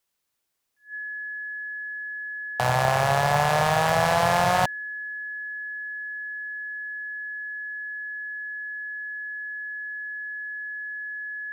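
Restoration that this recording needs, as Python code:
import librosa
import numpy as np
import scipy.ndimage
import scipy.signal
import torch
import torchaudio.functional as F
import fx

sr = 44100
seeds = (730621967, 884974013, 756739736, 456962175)

y = fx.fix_declip(x, sr, threshold_db=-11.0)
y = fx.notch(y, sr, hz=1700.0, q=30.0)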